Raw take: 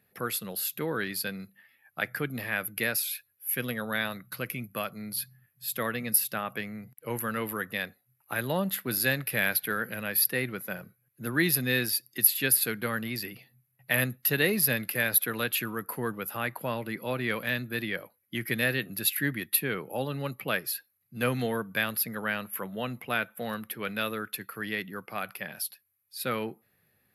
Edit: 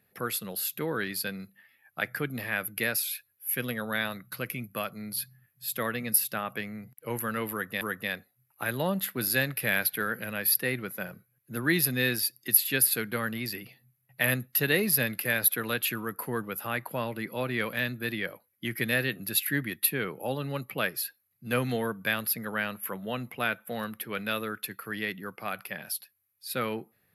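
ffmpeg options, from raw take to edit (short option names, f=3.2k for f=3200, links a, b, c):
-filter_complex "[0:a]asplit=2[a][b];[a]atrim=end=7.812[c];[b]atrim=start=7.508[d];[c][d]acrossfade=d=0.004:c1=hsin:c2=hsin"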